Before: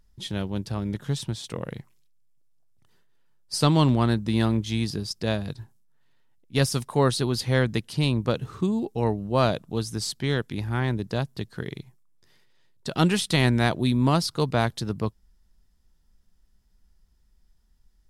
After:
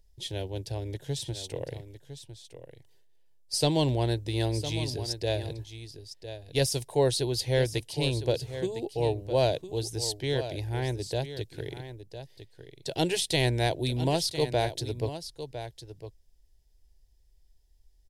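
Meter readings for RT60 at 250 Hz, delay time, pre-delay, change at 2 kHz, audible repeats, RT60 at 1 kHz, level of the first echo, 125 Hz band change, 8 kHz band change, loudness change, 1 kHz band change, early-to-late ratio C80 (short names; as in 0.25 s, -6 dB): none, 1.006 s, none, -6.0 dB, 1, none, -11.5 dB, -5.0 dB, 0.0 dB, -4.0 dB, -6.0 dB, none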